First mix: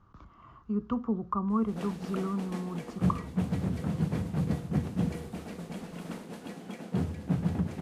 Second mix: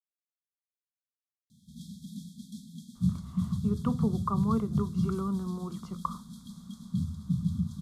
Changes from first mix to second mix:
speech: entry +2.95 s; background: add brick-wall FIR band-stop 250–3200 Hz

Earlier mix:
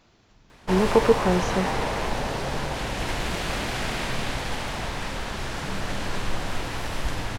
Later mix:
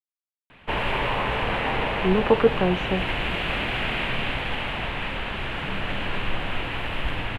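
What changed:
speech: entry +1.35 s; master: add resonant high shelf 4000 Hz -12.5 dB, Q 3

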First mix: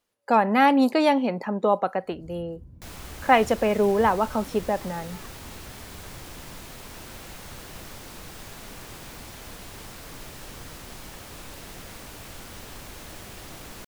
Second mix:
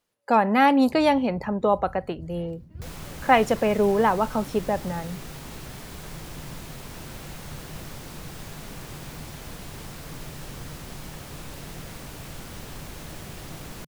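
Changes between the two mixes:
first sound: entry -1.25 s; second sound: add low shelf 490 Hz +3.5 dB; master: add bell 150 Hz +8.5 dB 0.34 oct

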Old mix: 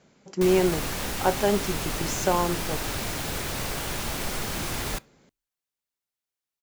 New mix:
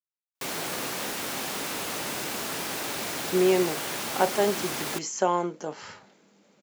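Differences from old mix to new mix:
speech: entry +2.95 s; master: add HPF 230 Hz 12 dB/oct

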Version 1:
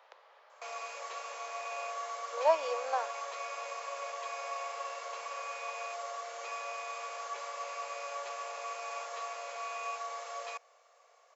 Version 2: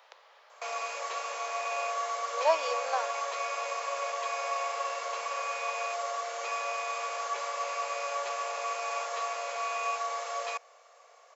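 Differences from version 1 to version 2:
speech: add high shelf 2500 Hz +10 dB; background +6.5 dB

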